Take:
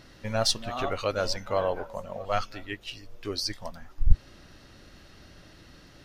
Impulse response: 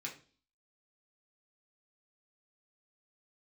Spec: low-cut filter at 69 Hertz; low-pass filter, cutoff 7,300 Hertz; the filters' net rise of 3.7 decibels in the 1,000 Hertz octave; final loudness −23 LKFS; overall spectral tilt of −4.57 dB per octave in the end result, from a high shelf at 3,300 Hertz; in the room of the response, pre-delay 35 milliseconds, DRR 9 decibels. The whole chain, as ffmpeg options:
-filter_complex "[0:a]highpass=69,lowpass=7300,equalizer=frequency=1000:width_type=o:gain=6,highshelf=frequency=3300:gain=-6,asplit=2[link_01][link_02];[1:a]atrim=start_sample=2205,adelay=35[link_03];[link_02][link_03]afir=irnorm=-1:irlink=0,volume=-8.5dB[link_04];[link_01][link_04]amix=inputs=2:normalize=0,volume=7.5dB"

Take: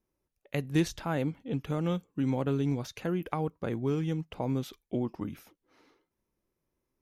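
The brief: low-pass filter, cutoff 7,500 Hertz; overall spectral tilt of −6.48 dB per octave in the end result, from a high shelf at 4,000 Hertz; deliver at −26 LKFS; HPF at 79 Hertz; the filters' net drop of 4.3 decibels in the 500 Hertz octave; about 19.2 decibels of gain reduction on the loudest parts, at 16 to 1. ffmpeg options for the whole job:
ffmpeg -i in.wav -af "highpass=79,lowpass=7500,equalizer=frequency=500:width_type=o:gain=-5.5,highshelf=frequency=4000:gain=-3.5,acompressor=threshold=-41dB:ratio=16,volume=21dB" out.wav

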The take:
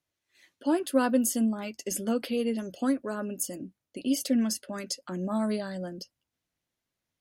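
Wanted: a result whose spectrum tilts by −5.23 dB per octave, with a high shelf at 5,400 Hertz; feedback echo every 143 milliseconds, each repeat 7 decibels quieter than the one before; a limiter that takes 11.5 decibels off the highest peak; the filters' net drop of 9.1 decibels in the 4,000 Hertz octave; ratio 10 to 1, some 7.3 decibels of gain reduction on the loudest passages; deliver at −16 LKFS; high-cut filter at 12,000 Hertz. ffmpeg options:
ffmpeg -i in.wav -af "lowpass=12000,equalizer=frequency=4000:width_type=o:gain=-9,highshelf=frequency=5400:gain=-8,acompressor=threshold=-26dB:ratio=10,alimiter=level_in=6.5dB:limit=-24dB:level=0:latency=1,volume=-6.5dB,aecho=1:1:143|286|429|572|715:0.447|0.201|0.0905|0.0407|0.0183,volume=22dB" out.wav

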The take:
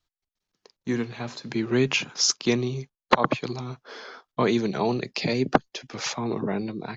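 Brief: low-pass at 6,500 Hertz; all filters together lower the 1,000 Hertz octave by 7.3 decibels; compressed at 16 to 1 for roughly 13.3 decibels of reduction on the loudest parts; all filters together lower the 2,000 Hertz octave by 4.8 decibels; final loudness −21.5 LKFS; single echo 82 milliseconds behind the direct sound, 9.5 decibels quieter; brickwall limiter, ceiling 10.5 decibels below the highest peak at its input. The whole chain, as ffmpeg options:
ffmpeg -i in.wav -af "lowpass=6500,equalizer=frequency=1000:width_type=o:gain=-8.5,equalizer=frequency=2000:width_type=o:gain=-4,acompressor=threshold=-31dB:ratio=16,alimiter=level_in=2.5dB:limit=-24dB:level=0:latency=1,volume=-2.5dB,aecho=1:1:82:0.335,volume=16.5dB" out.wav

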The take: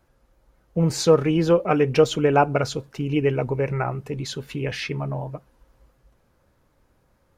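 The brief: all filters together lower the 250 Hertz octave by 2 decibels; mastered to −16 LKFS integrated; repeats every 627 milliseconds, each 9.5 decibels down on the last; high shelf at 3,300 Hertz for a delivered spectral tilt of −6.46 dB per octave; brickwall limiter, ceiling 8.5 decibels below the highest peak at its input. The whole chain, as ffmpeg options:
ffmpeg -i in.wav -af "equalizer=frequency=250:width_type=o:gain=-3,highshelf=frequency=3300:gain=-9,alimiter=limit=-14dB:level=0:latency=1,aecho=1:1:627|1254|1881|2508:0.335|0.111|0.0365|0.012,volume=10dB" out.wav

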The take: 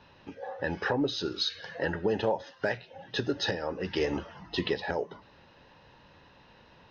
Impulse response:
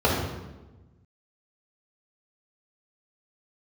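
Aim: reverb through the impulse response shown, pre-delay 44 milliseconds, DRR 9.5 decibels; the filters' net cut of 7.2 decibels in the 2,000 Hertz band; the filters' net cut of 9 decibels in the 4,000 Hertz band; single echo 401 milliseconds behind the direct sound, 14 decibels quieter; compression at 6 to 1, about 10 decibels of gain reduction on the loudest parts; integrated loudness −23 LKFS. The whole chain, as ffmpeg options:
-filter_complex "[0:a]equalizer=frequency=2000:width_type=o:gain=-7.5,equalizer=frequency=4000:width_type=o:gain=-8.5,acompressor=threshold=-35dB:ratio=6,aecho=1:1:401:0.2,asplit=2[link_01][link_02];[1:a]atrim=start_sample=2205,adelay=44[link_03];[link_02][link_03]afir=irnorm=-1:irlink=0,volume=-28dB[link_04];[link_01][link_04]amix=inputs=2:normalize=0,volume=16.5dB"

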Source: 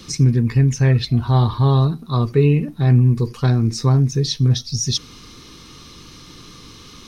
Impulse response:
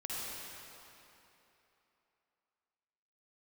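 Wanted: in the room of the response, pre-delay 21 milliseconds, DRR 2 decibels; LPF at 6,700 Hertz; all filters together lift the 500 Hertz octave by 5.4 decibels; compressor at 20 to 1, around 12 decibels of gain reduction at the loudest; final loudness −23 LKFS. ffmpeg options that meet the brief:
-filter_complex "[0:a]lowpass=6700,equalizer=frequency=500:width_type=o:gain=7,acompressor=threshold=-18dB:ratio=20,asplit=2[link_01][link_02];[1:a]atrim=start_sample=2205,adelay=21[link_03];[link_02][link_03]afir=irnorm=-1:irlink=0,volume=-5dB[link_04];[link_01][link_04]amix=inputs=2:normalize=0,volume=-0.5dB"

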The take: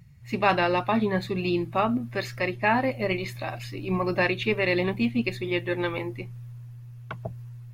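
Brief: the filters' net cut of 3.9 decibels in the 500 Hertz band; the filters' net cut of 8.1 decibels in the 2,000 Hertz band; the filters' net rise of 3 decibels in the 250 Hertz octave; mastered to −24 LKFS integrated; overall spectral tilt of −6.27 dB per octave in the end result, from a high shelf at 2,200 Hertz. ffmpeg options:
ffmpeg -i in.wav -af "equalizer=frequency=250:width_type=o:gain=6,equalizer=frequency=500:width_type=o:gain=-7.5,equalizer=frequency=2000:width_type=o:gain=-8,highshelf=frequency=2200:gain=-3.5,volume=3.5dB" out.wav

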